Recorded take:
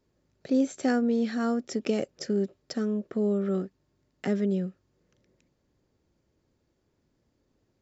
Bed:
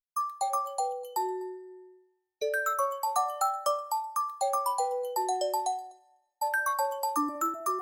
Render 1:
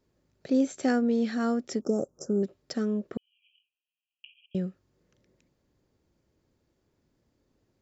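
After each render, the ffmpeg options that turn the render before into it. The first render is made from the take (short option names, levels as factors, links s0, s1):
-filter_complex "[0:a]asettb=1/sr,asplit=3[s0][s1][s2];[s0]atrim=end=1.814[s3];[s1]atrim=start=1.81:end=2.43,asetpts=PTS-STARTPTS,afade=t=in:d=0.004:c=qsin,afade=t=out:st=0.616:d=0.004:c=qsin,asuperstop=centerf=2800:order=12:qfactor=0.65[s4];[s2]atrim=start=2.426[s5];[s3][s4]acrossfade=d=0.004:c1=hsin:c2=qsin[s6];[s6][s5]acrossfade=d=0.004:c1=qsin:c2=hsin,asettb=1/sr,asplit=3[s7][s8][s9];[s7]atrim=end=3.174[s10];[s8]atrim=start=3.17:end=4.55,asetpts=PTS-STARTPTS,afade=t=in:d=0.004:c=qsin,afade=t=out:st=1.376:d=0.004:c=qsin,asuperpass=centerf=2800:order=20:qfactor=3.1[s11];[s9]atrim=start=4.546[s12];[s10][s11]acrossfade=d=0.004:c1=hsin:c2=qsin[s13];[s13][s12]acrossfade=d=0.004:c1=qsin:c2=hsin"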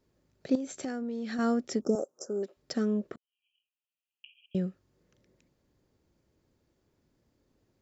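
-filter_complex "[0:a]asettb=1/sr,asplit=3[s0][s1][s2];[s0]atrim=end=0.554[s3];[s1]atrim=start=0.55:end=1.39,asetpts=PTS-STARTPTS,afade=t=in:d=0.004:c=qsin,afade=t=out:st=0.836:d=0.004:c=qsin,acompressor=threshold=0.0282:ratio=10:attack=3.2:release=140:knee=1:detection=peak[s4];[s2]atrim=start=1.386[s5];[s3][s4]acrossfade=d=0.004:c1=hsin:c2=qsin[s6];[s6][s5]acrossfade=d=0.004:c1=qsin:c2=hsin,asettb=1/sr,asplit=3[s7][s8][s9];[s7]atrim=end=1.954[s10];[s8]atrim=start=1.95:end=2.57,asetpts=PTS-STARTPTS,afade=t=in:d=0.004:c=qsin,afade=t=out:st=0.616:d=0.004:c=qsin,highpass=430[s11];[s9]atrim=start=2.566[s12];[s10][s11]acrossfade=d=0.004:c1=hsin:c2=qsin[s13];[s13][s12]acrossfade=d=0.004:c1=qsin:c2=hsin,asplit=2[s14][s15];[s14]atrim=end=3.16,asetpts=PTS-STARTPTS,afade=t=out:st=3.156:d=0.004:c=hsin[s16];[s15]atrim=start=3.16,asetpts=PTS-STARTPTS,afade=t=in:d=1.43[s17];[s16][s17]concat=n=2:v=0:a=1"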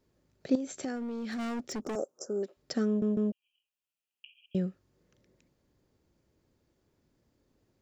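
-filter_complex "[0:a]asplit=3[s0][s1][s2];[s0]afade=t=out:st=0.95:d=0.02[s3];[s1]volume=42.2,asoftclip=hard,volume=0.0237,afade=t=in:st=0.95:d=0.02,afade=t=out:st=1.95:d=0.02[s4];[s2]afade=t=in:st=1.95:d=0.02[s5];[s3][s4][s5]amix=inputs=3:normalize=0,asplit=4[s6][s7][s8][s9];[s6]atrim=end=3.022[s10];[s7]atrim=start=2.868:end=3.022[s11];[s8]atrim=start=2.868:end=3.022[s12];[s9]atrim=start=3.318[s13];[s10][s11]acrossfade=d=0.004:c1=hsin:c2=hsin[s14];[s14][s12]acrossfade=d=0.004:c1=hsin:c2=hsin[s15];[s15][s13]acrossfade=d=0.004:c1=hsin:c2=hsin"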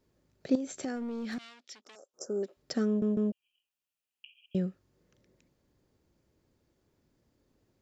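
-filter_complex "[0:a]asettb=1/sr,asplit=3[s0][s1][s2];[s0]atrim=end=1.384[s3];[s1]atrim=start=1.38:end=2.14,asetpts=PTS-STARTPTS,afade=t=in:d=0.004:c=qsin,afade=t=out:st=0.756:d=0.004:c=qsin,bandpass=f=3600:t=q:w=1.8[s4];[s2]atrim=start=2.136[s5];[s3][s4]acrossfade=d=0.004:c1=hsin:c2=qsin[s6];[s6][s5]acrossfade=d=0.004:c1=qsin:c2=hsin"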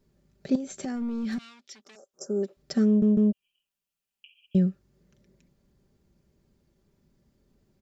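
-af "bass=f=250:g=8,treble=f=4000:g=1,aecho=1:1:5.1:0.49"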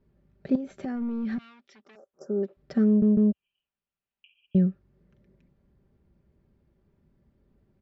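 -af "lowpass=2300,equalizer=f=74:w=1.1:g=4.5"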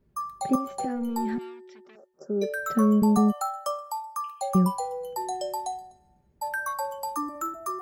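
-filter_complex "[1:a]volume=0.794[s0];[0:a][s0]amix=inputs=2:normalize=0"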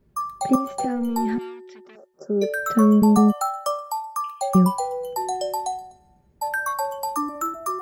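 -af "volume=1.78"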